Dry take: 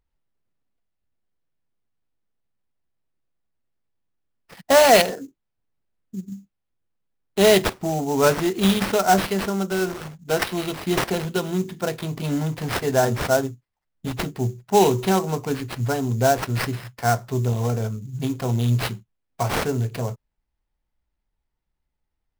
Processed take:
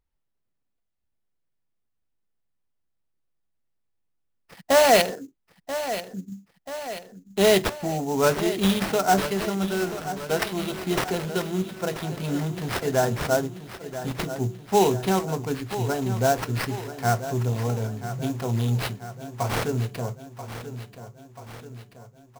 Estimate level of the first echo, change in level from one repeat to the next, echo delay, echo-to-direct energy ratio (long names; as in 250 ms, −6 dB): −12.0 dB, −5.0 dB, 985 ms, −10.5 dB